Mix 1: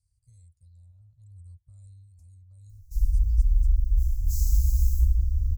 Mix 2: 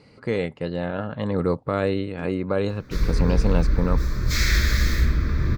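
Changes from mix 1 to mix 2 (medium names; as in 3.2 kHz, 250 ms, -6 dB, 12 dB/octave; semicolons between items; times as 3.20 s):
speech +6.0 dB; first sound -7.5 dB; master: remove inverse Chebyshev band-stop 190–3300 Hz, stop band 50 dB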